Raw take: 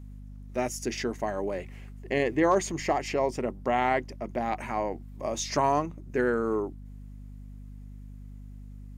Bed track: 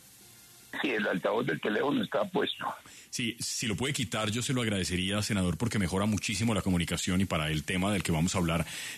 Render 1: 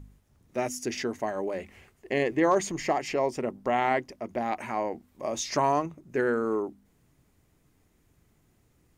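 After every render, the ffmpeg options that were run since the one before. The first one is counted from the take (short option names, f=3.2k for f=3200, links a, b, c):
-af "bandreject=f=50:t=h:w=4,bandreject=f=100:t=h:w=4,bandreject=f=150:t=h:w=4,bandreject=f=200:t=h:w=4,bandreject=f=250:t=h:w=4"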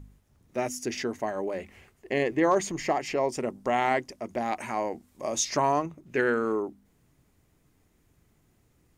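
-filter_complex "[0:a]asettb=1/sr,asplit=3[a][b][c];[a]atrim=end=3.324[d];[b]atrim=start=3.32:end=5.45,asetpts=PTS-STARTPTS,afade=t=in:d=0.004:c=qsin,afade=t=out:st=2.126:d=0.004:c=qsin,equalizer=f=8.1k:t=o:w=1.6:g=7.5[e];[c]atrim=start=5.446[f];[d][e]acrossfade=d=0.004:c1=hsin:c2=qsin[g];[g][f]acrossfade=d=0.004:c1=qsin:c2=hsin,asettb=1/sr,asplit=3[h][i][j];[h]atrim=end=6.064[k];[i]atrim=start=6.06:end=6.52,asetpts=PTS-STARTPTS,afade=t=in:d=0.004:c=qsin,afade=t=out:st=0.456:d=0.004:c=qsin,equalizer=f=2.8k:w=0.94:g=9.5[l];[j]atrim=start=6.516[m];[k][l]acrossfade=d=0.004:c1=hsin:c2=qsin[n];[n][m]acrossfade=d=0.004:c1=qsin:c2=hsin"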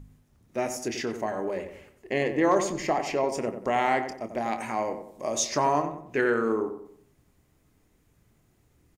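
-filter_complex "[0:a]asplit=2[a][b];[b]adelay=27,volume=-11.5dB[c];[a][c]amix=inputs=2:normalize=0,asplit=2[d][e];[e]adelay=92,lowpass=f=1.7k:p=1,volume=-8dB,asplit=2[f][g];[g]adelay=92,lowpass=f=1.7k:p=1,volume=0.42,asplit=2[h][i];[i]adelay=92,lowpass=f=1.7k:p=1,volume=0.42,asplit=2[j][k];[k]adelay=92,lowpass=f=1.7k:p=1,volume=0.42,asplit=2[l][m];[m]adelay=92,lowpass=f=1.7k:p=1,volume=0.42[n];[d][f][h][j][l][n]amix=inputs=6:normalize=0"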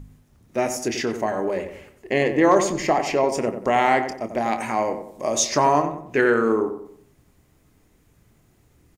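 -af "volume=6dB"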